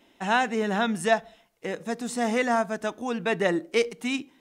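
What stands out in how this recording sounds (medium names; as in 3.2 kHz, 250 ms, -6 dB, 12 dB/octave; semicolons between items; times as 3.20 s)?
noise floor -62 dBFS; spectral tilt -3.0 dB/octave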